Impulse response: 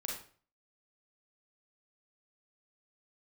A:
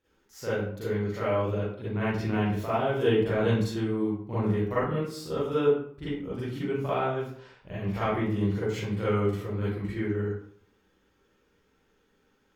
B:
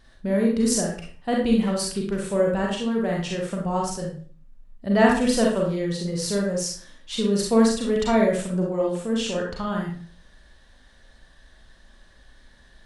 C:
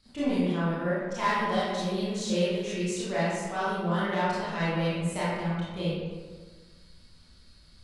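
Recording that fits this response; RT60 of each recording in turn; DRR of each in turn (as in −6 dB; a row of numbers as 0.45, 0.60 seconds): B; 0.60, 0.45, 1.5 seconds; −12.0, −2.0, −11.0 decibels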